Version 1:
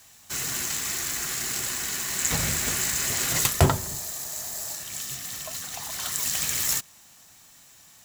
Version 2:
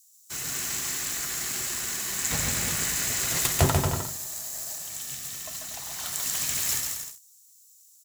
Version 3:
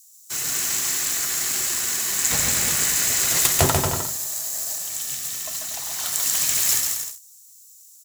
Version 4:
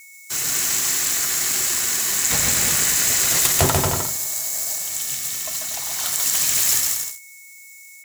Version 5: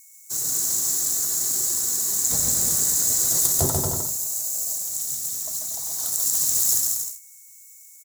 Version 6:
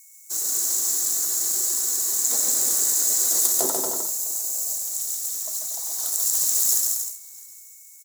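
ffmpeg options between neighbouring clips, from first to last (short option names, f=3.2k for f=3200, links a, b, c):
-filter_complex "[0:a]aecho=1:1:140|238|306.6|354.6|388.2:0.631|0.398|0.251|0.158|0.1,acrossover=split=5400[a][b];[a]aeval=exprs='sgn(val(0))*max(abs(val(0))-0.00398,0)':c=same[c];[c][b]amix=inputs=2:normalize=0,volume=-3dB"
-af "bass=f=250:g=-5,treble=f=4k:g=3,volume=4.5dB"
-filter_complex "[0:a]asplit=2[a][b];[b]alimiter=limit=-11dB:level=0:latency=1:release=62,volume=-2.5dB[c];[a][c]amix=inputs=2:normalize=0,aeval=exprs='val(0)+0.00794*sin(2*PI*2200*n/s)':c=same,volume=-2dB"
-af "firequalizer=gain_entry='entry(360,0);entry(2600,-22);entry(3800,-6);entry(6700,3)':delay=0.05:min_phase=1,volume=-4.5dB"
-af "highpass=f=280:w=0.5412,highpass=f=280:w=1.3066,aecho=1:1:656|1312:0.0631|0.0133"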